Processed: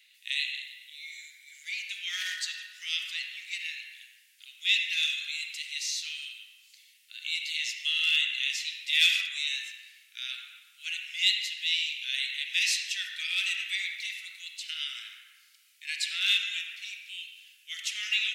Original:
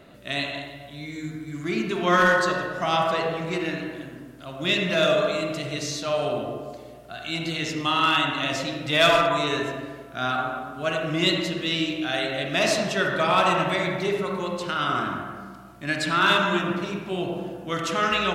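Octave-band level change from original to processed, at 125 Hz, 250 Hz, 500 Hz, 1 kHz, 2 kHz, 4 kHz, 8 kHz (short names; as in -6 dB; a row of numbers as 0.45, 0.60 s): under -40 dB, under -40 dB, under -40 dB, under -35 dB, -5.0 dB, 0.0 dB, 0.0 dB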